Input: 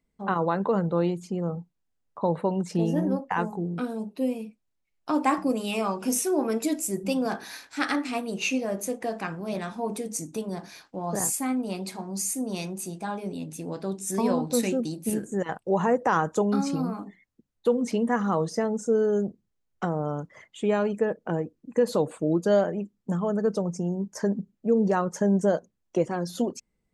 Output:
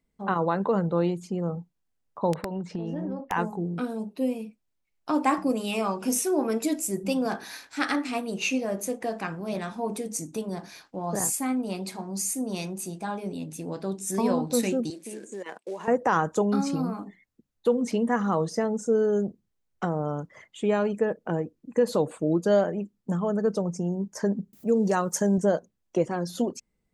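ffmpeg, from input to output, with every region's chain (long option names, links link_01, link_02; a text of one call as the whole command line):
ffmpeg -i in.wav -filter_complex "[0:a]asettb=1/sr,asplit=3[link_01][link_02][link_03];[link_01]atrim=end=2.334[link_04];[link_02]atrim=start=2.33:end=3.32,asetpts=PTS-STARTPTS,afade=type=in:duration=0.004:curve=qsin,afade=type=out:start_time=0.986:duration=0.004:curve=qsin,lowpass=3800,acompressor=threshold=-27dB:ratio=12:attack=3.2:release=140:knee=1:detection=peak,aeval=exprs='(mod(11.2*val(0)+1,2)-1)/11.2':channel_layout=same[link_05];[link_03]atrim=start=3.316[link_06];[link_04][link_05]acrossfade=duration=0.004:curve1=hsin:curve2=qsin[link_07];[link_07][link_06]acrossfade=duration=0.004:curve1=qsin:curve2=hsin,asettb=1/sr,asplit=3[link_08][link_09][link_10];[link_08]atrim=end=14.904[link_11];[link_09]atrim=start=14.9:end=15.88,asetpts=PTS-STARTPTS,afade=type=in:duration=0.004:curve=qsin,afade=type=out:start_time=0.976:duration=0.004:curve=qsin,acompressor=threshold=-29dB:ratio=6:attack=3.2:release=140:knee=1:detection=peak,acrusher=bits=6:mode=log:mix=0:aa=0.000001,highpass=frequency=260:width=0.5412,highpass=frequency=260:width=1.3066,equalizer=frequency=270:width_type=q:width=4:gain=-5,equalizer=frequency=790:width_type=q:width=4:gain=-6,equalizer=frequency=1300:width_type=q:width=4:gain=-6,equalizer=frequency=2300:width_type=q:width=4:gain=4,lowpass=frequency=9700:width=0.5412,lowpass=frequency=9700:width=1.3066[link_12];[link_10]atrim=start=15.876[link_13];[link_11][link_12]acrossfade=duration=0.004:curve1=hsin:curve2=qsin[link_14];[link_14][link_13]acrossfade=duration=0.004:curve1=qsin:curve2=hsin,asettb=1/sr,asplit=3[link_15][link_16][link_17];[link_15]atrim=end=24.534[link_18];[link_16]atrim=start=24.53:end=25.38,asetpts=PTS-STARTPTS,afade=type=in:duration=0.004:curve=qsin,afade=type=out:start_time=0.846:duration=0.004:curve=qsin,highpass=61,aemphasis=mode=production:type=75fm,acompressor=mode=upward:threshold=-37dB:ratio=2.5:attack=3.2:release=140:knee=2.83:detection=peak[link_19];[link_17]atrim=start=25.376[link_20];[link_18][link_19]acrossfade=duration=0.004:curve1=hsin:curve2=qsin[link_21];[link_21][link_20]acrossfade=duration=0.004:curve1=qsin:curve2=hsin" out.wav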